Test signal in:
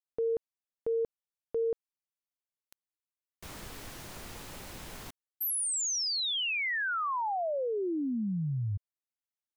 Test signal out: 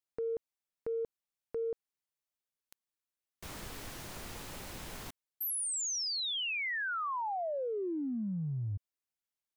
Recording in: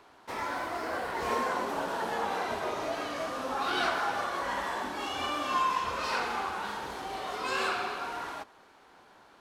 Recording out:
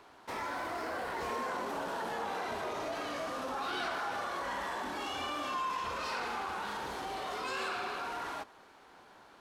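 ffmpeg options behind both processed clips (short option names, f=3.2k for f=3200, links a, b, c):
-af "acompressor=threshold=-35dB:ratio=2.5:attack=1.1:release=40:knee=1:detection=peak"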